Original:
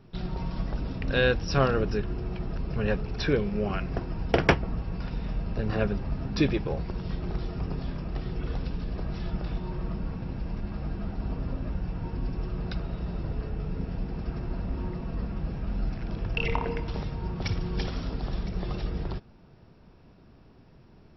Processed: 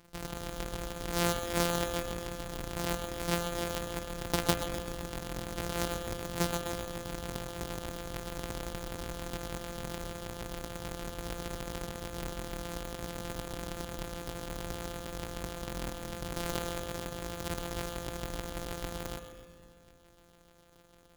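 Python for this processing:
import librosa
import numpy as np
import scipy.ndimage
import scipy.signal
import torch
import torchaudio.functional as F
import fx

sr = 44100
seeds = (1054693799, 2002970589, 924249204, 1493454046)

p1 = np.r_[np.sort(x[:len(x) // 256 * 256].reshape(-1, 256), axis=1).ravel(), x[len(x) // 256 * 256:]]
p2 = fx.low_shelf(p1, sr, hz=190.0, db=-6.0)
p3 = fx.sample_hold(p2, sr, seeds[0], rate_hz=4300.0, jitter_pct=0)
p4 = p2 + (p3 * 10.0 ** (-9.5 / 20.0))
p5 = fx.high_shelf(p4, sr, hz=2500.0, db=7.5)
p6 = p5 + fx.echo_split(p5, sr, split_hz=430.0, low_ms=269, high_ms=128, feedback_pct=52, wet_db=-11.0, dry=0)
p7 = fx.rev_spring(p6, sr, rt60_s=1.6, pass_ms=(56,), chirp_ms=70, drr_db=11.0)
y = p7 * 10.0 ** (-8.5 / 20.0)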